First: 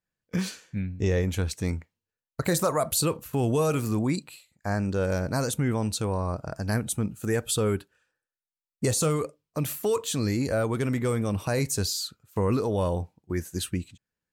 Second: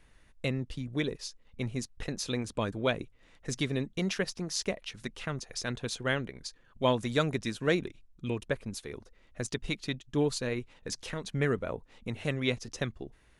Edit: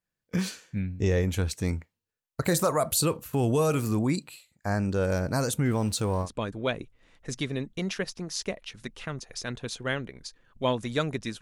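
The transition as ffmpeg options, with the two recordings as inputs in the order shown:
-filter_complex "[0:a]asettb=1/sr,asplit=3[a][b][c];[a]atrim=end=5.654[d];[b]atrim=start=5.65:end=6.29,asetpts=PTS-STARTPTS,afade=t=in:d=0.004:c=qsin,afade=t=out:st=0.636:d=0.004:c=qsin,aeval=exprs='val(0)+0.5*0.00668*sgn(val(0))':c=same[e];[c]atrim=start=6.286[f];[d][e]acrossfade=d=0.004:c1=hsin:c2=qsin[g];[g][f]acrossfade=d=0.004:c1=qsin:c2=hsin,apad=whole_dur=11.41,atrim=end=11.41,atrim=end=6.29,asetpts=PTS-STARTPTS[h];[1:a]atrim=start=2.41:end=7.61,asetpts=PTS-STARTPTS[i];[h][i]acrossfade=d=0.08:c1=tri:c2=tri"

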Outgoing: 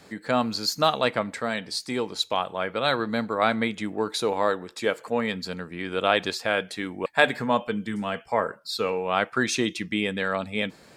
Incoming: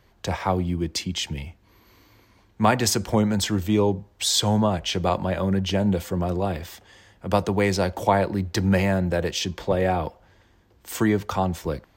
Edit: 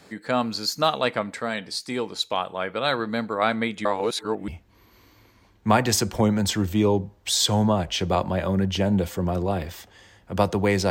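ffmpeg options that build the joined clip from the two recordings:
-filter_complex "[0:a]apad=whole_dur=10.9,atrim=end=10.9,asplit=2[a][b];[a]atrim=end=3.852[c];[b]atrim=start=3.848:end=4.482,asetpts=PTS-STARTPTS,areverse[d];[1:a]atrim=start=1.418:end=7.84[e];[c][d]acrossfade=d=0.004:c1=hsin:c2=hsin[f];[f][e]acrossfade=d=0.004:c1=hsin:c2=hsin"

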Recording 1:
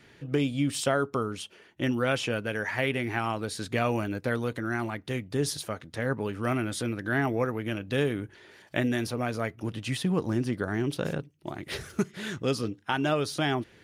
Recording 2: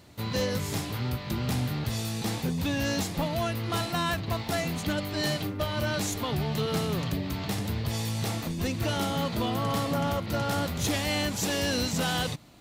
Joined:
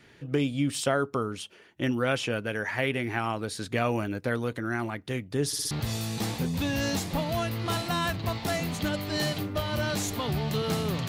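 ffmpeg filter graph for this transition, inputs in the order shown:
-filter_complex "[0:a]apad=whole_dur=11.08,atrim=end=11.08,asplit=4[a][b][c][d];[a]atrim=end=5.532[e];[b]atrim=start=5.468:end=5.532[f];[c]atrim=start=5.468:end=5.532[g];[d]atrim=start=5.468:end=5.532[h];[1:a]atrim=start=1.748:end=7.12[i];[e][f]acrossfade=d=0.004:c1=hsin:c2=hsin[j];[j][g]acrossfade=d=0.004:c1=hsin:c2=hsin[k];[k][h]acrossfade=d=0.004:c1=hsin:c2=hsin[l];[l][i]acrossfade=d=0.004:c1=hsin:c2=hsin"

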